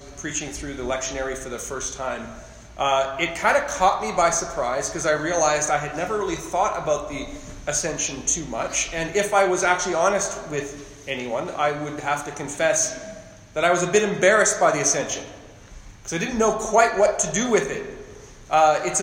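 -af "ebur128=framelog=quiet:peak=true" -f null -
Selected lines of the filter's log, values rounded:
Integrated loudness:
  I:         -22.2 LUFS
  Threshold: -32.8 LUFS
Loudness range:
  LRA:         4.3 LU
  Threshold: -42.7 LUFS
  LRA low:   -24.9 LUFS
  LRA high:  -20.6 LUFS
True peak:
  Peak:       -4.3 dBFS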